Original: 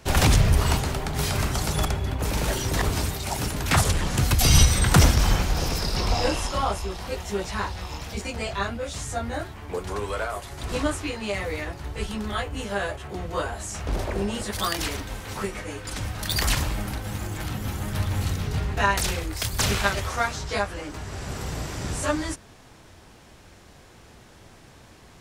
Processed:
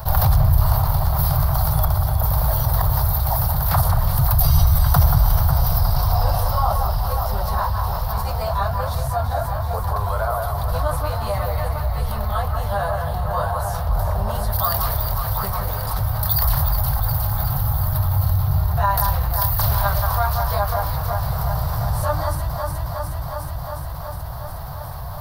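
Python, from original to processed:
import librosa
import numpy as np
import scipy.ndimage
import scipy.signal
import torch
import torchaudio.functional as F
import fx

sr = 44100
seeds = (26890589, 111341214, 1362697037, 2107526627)

p1 = fx.curve_eq(x, sr, hz=(140.0, 240.0, 360.0, 650.0, 1100.0, 2500.0, 4500.0, 7300.0, 14000.0), db=(0, -24, -26, -2, -2, -24, -9, -25, 11))
p2 = p1 + fx.echo_alternate(p1, sr, ms=181, hz=2200.0, feedback_pct=83, wet_db=-6.0, dry=0)
y = fx.env_flatten(p2, sr, amount_pct=50)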